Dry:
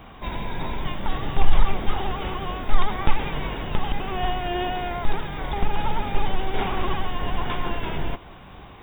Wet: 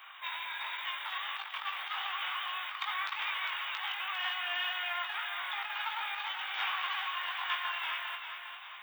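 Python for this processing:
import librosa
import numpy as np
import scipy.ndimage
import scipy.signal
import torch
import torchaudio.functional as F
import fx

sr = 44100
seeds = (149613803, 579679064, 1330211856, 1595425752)

p1 = 10.0 ** (-14.5 / 20.0) * np.tanh(x / 10.0 ** (-14.5 / 20.0))
p2 = scipy.signal.sosfilt(scipy.signal.butter(4, 1200.0, 'highpass', fs=sr, output='sos'), p1)
p3 = fx.doubler(p2, sr, ms=20.0, db=-5.0)
y = p3 + fx.echo_feedback(p3, sr, ms=402, feedback_pct=45, wet_db=-8, dry=0)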